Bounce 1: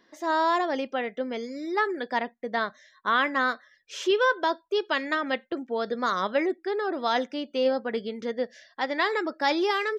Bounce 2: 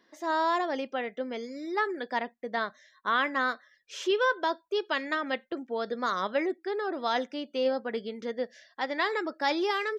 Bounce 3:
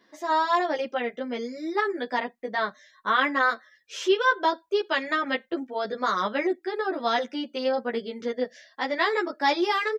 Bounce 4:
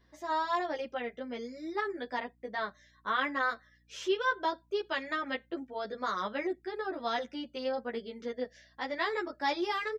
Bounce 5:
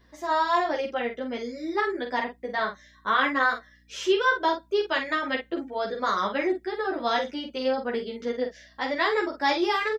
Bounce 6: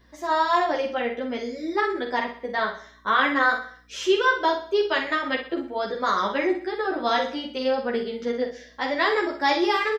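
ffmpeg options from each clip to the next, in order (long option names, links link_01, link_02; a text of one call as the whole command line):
ffmpeg -i in.wav -af "lowshelf=frequency=68:gain=-11.5,volume=-3dB" out.wav
ffmpeg -i in.wav -filter_complex "[0:a]asplit=2[link_01][link_02];[link_02]adelay=11.3,afreqshift=0.31[link_03];[link_01][link_03]amix=inputs=2:normalize=1,volume=7dB" out.wav
ffmpeg -i in.wav -af "aeval=exprs='val(0)+0.00112*(sin(2*PI*60*n/s)+sin(2*PI*2*60*n/s)/2+sin(2*PI*3*60*n/s)/3+sin(2*PI*4*60*n/s)/4+sin(2*PI*5*60*n/s)/5)':channel_layout=same,volume=-8dB" out.wav
ffmpeg -i in.wav -filter_complex "[0:a]asplit=2[link_01][link_02];[link_02]adelay=46,volume=-7dB[link_03];[link_01][link_03]amix=inputs=2:normalize=0,volume=7dB" out.wav
ffmpeg -i in.wav -af "aecho=1:1:63|126|189|252|315:0.282|0.127|0.0571|0.0257|0.0116,volume=2dB" out.wav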